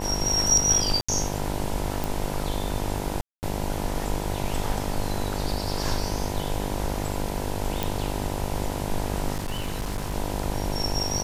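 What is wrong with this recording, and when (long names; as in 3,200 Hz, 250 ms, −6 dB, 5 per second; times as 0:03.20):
mains buzz 50 Hz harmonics 20 −31 dBFS
0:01.01–0:01.08: drop-out 75 ms
0:02.04: click
0:03.21–0:03.43: drop-out 219 ms
0:07.83: click
0:09.33–0:10.14: clipping −24.5 dBFS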